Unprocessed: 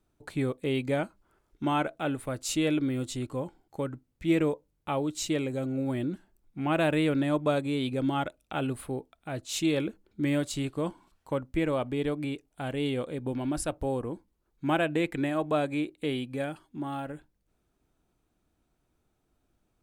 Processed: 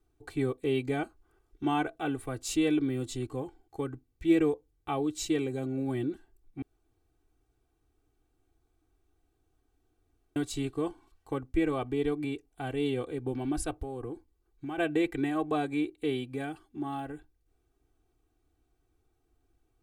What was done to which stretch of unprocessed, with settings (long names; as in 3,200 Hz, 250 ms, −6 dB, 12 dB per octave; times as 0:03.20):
0:06.62–0:10.36: fill with room tone
0:13.78–0:14.78: downward compressor, threshold −33 dBFS
whole clip: low-shelf EQ 360 Hz +4.5 dB; comb filter 2.6 ms, depth 93%; level −5.5 dB